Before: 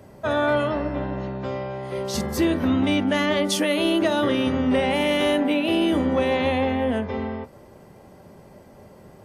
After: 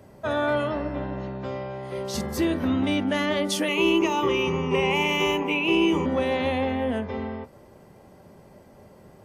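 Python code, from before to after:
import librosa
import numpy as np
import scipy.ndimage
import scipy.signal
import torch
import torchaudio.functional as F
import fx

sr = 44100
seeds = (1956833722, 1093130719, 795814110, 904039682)

y = fx.ripple_eq(x, sr, per_octave=0.75, db=18, at=(3.68, 6.06))
y = y * 10.0 ** (-3.0 / 20.0)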